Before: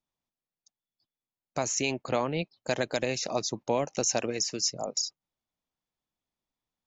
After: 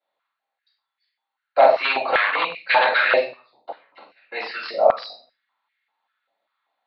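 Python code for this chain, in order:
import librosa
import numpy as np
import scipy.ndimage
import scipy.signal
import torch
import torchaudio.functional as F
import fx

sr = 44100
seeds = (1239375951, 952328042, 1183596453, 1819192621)

p1 = fx.rider(x, sr, range_db=10, speed_s=0.5)
p2 = x + (p1 * 10.0 ** (1.5 / 20.0))
p3 = fx.gate_flip(p2, sr, shuts_db=-18.0, range_db=-35, at=(3.15, 4.32))
p4 = p3 + fx.echo_multitap(p3, sr, ms=(45, 56, 93), db=(-8.0, -11.5, -19.0), dry=0)
p5 = fx.room_shoebox(p4, sr, seeds[0], volume_m3=32.0, walls='mixed', distance_m=2.2)
p6 = 10.0 ** (-4.5 / 20.0) * (np.abs((p5 / 10.0 ** (-4.5 / 20.0) + 3.0) % 4.0 - 2.0) - 1.0)
p7 = scipy.signal.sosfilt(scipy.signal.butter(16, 4400.0, 'lowpass', fs=sr, output='sos'), p6)
p8 = fx.filter_held_highpass(p7, sr, hz=5.1, low_hz=620.0, high_hz=2000.0)
y = p8 * 10.0 ** (-7.5 / 20.0)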